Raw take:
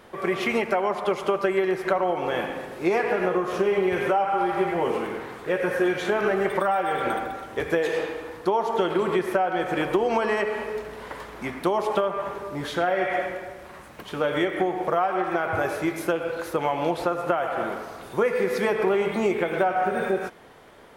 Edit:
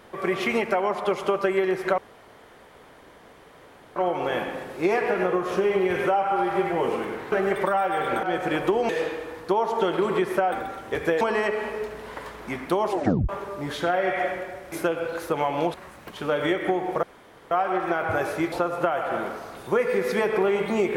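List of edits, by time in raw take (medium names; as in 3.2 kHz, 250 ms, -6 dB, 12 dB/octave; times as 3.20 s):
1.98 s: insert room tone 1.98 s
5.34–6.26 s: delete
7.17–7.86 s: swap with 9.49–10.15 s
11.84 s: tape stop 0.39 s
14.95 s: insert room tone 0.48 s
15.96–16.98 s: move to 13.66 s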